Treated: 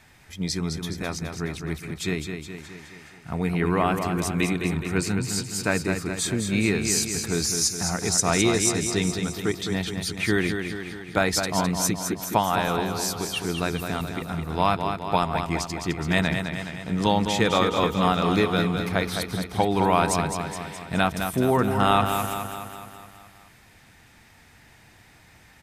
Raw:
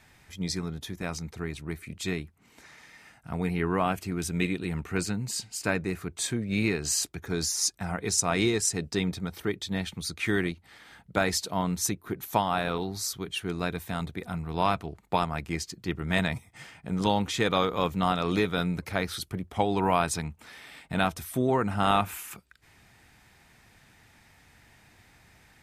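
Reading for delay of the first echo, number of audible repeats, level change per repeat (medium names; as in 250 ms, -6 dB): 210 ms, 6, -5.0 dB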